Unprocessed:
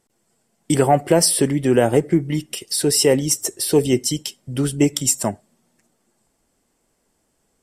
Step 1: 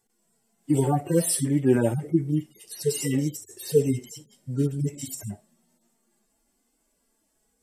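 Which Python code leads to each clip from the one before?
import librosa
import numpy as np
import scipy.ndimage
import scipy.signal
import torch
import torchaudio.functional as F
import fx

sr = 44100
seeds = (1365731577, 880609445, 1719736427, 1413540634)

y = fx.hpss_only(x, sr, part='harmonic')
y = fx.high_shelf(y, sr, hz=8500.0, db=8.0)
y = F.gain(torch.from_numpy(y), -2.0).numpy()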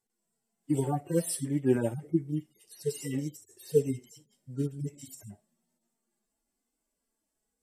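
y = fx.upward_expand(x, sr, threshold_db=-31.0, expansion=1.5)
y = F.gain(torch.from_numpy(y), -3.5).numpy()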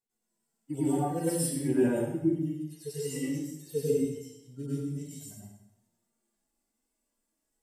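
y = fx.rev_plate(x, sr, seeds[0], rt60_s=0.79, hf_ratio=0.95, predelay_ms=85, drr_db=-9.5)
y = F.gain(torch.from_numpy(y), -8.5).numpy()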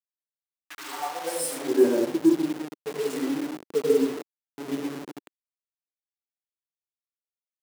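y = fx.delta_hold(x, sr, step_db=-33.0)
y = fx.filter_sweep_highpass(y, sr, from_hz=2800.0, to_hz=320.0, start_s=0.19, end_s=1.96, q=2.0)
y = F.gain(torch.from_numpy(y), 2.5).numpy()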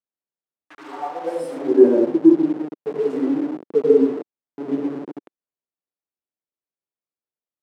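y = fx.bandpass_q(x, sr, hz=340.0, q=0.66)
y = F.gain(torch.from_numpy(y), 7.5).numpy()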